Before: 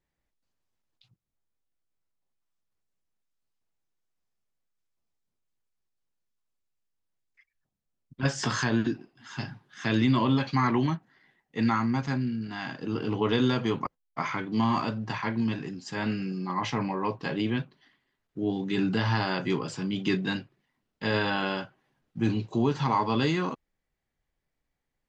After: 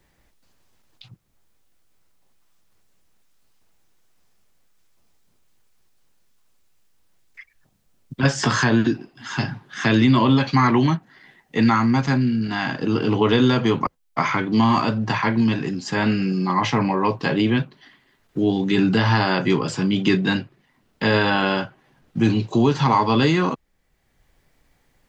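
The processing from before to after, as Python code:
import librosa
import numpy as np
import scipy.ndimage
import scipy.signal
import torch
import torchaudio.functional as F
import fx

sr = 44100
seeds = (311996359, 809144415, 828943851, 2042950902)

y = fx.band_squash(x, sr, depth_pct=40)
y = y * librosa.db_to_amplitude(8.5)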